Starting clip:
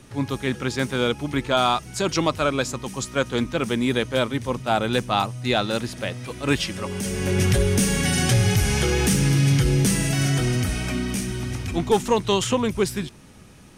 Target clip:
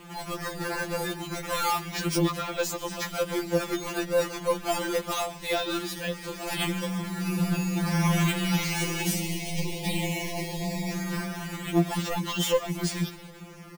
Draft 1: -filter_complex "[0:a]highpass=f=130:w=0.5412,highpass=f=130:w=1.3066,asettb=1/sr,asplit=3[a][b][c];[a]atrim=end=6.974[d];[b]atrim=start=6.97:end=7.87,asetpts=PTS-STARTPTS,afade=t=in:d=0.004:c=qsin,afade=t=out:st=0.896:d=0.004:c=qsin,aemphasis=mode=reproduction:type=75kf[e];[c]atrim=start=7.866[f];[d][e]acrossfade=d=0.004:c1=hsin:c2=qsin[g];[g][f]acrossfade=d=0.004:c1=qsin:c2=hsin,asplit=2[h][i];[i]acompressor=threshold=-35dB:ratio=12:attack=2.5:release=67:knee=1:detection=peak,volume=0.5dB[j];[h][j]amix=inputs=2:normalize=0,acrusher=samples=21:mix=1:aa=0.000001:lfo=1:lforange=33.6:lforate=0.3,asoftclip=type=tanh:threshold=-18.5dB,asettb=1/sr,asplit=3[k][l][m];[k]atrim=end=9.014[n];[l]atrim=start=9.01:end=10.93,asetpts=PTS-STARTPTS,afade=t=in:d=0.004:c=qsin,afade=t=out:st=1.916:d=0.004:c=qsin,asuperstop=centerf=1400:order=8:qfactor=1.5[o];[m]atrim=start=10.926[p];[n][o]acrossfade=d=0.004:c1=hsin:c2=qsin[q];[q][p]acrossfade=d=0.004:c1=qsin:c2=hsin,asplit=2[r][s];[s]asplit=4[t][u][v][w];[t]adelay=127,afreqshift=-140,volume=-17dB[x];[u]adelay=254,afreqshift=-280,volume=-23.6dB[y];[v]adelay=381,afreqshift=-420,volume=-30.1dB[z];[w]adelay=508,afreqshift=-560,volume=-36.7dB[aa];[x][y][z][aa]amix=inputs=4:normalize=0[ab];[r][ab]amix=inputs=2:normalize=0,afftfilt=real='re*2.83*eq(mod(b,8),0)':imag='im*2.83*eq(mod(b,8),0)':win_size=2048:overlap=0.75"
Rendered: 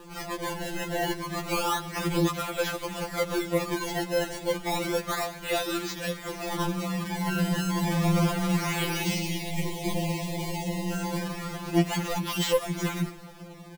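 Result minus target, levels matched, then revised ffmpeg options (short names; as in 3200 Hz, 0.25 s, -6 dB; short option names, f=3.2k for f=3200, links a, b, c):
decimation with a swept rate: distortion +5 dB
-filter_complex "[0:a]highpass=f=130:w=0.5412,highpass=f=130:w=1.3066,asettb=1/sr,asplit=3[a][b][c];[a]atrim=end=6.974[d];[b]atrim=start=6.97:end=7.87,asetpts=PTS-STARTPTS,afade=t=in:d=0.004:c=qsin,afade=t=out:st=0.896:d=0.004:c=qsin,aemphasis=mode=reproduction:type=75kf[e];[c]atrim=start=7.866[f];[d][e]acrossfade=d=0.004:c1=hsin:c2=qsin[g];[g][f]acrossfade=d=0.004:c1=qsin:c2=hsin,asplit=2[h][i];[i]acompressor=threshold=-35dB:ratio=12:attack=2.5:release=67:knee=1:detection=peak,volume=0.5dB[j];[h][j]amix=inputs=2:normalize=0,acrusher=samples=8:mix=1:aa=0.000001:lfo=1:lforange=12.8:lforate=0.3,asoftclip=type=tanh:threshold=-18.5dB,asettb=1/sr,asplit=3[k][l][m];[k]atrim=end=9.014[n];[l]atrim=start=9.01:end=10.93,asetpts=PTS-STARTPTS,afade=t=in:d=0.004:c=qsin,afade=t=out:st=1.916:d=0.004:c=qsin,asuperstop=centerf=1400:order=8:qfactor=1.5[o];[m]atrim=start=10.926[p];[n][o]acrossfade=d=0.004:c1=hsin:c2=qsin[q];[q][p]acrossfade=d=0.004:c1=qsin:c2=hsin,asplit=2[r][s];[s]asplit=4[t][u][v][w];[t]adelay=127,afreqshift=-140,volume=-17dB[x];[u]adelay=254,afreqshift=-280,volume=-23.6dB[y];[v]adelay=381,afreqshift=-420,volume=-30.1dB[z];[w]adelay=508,afreqshift=-560,volume=-36.7dB[aa];[x][y][z][aa]amix=inputs=4:normalize=0[ab];[r][ab]amix=inputs=2:normalize=0,afftfilt=real='re*2.83*eq(mod(b,8),0)':imag='im*2.83*eq(mod(b,8),0)':win_size=2048:overlap=0.75"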